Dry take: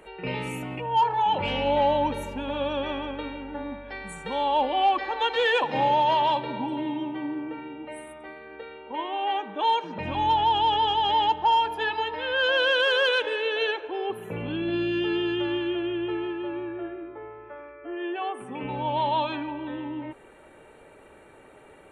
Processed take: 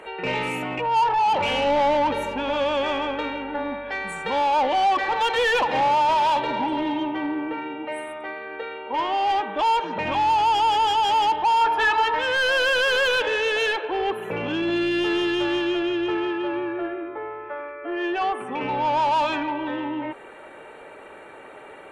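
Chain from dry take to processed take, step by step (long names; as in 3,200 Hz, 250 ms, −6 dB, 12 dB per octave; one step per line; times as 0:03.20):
0:06.21–0:07.04: high-shelf EQ 6,700 Hz +7.5 dB
mid-hump overdrive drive 18 dB, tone 2,500 Hz, clips at −14 dBFS
0:11.61–0:12.19: parametric band 1,300 Hz +7 dB 0.85 octaves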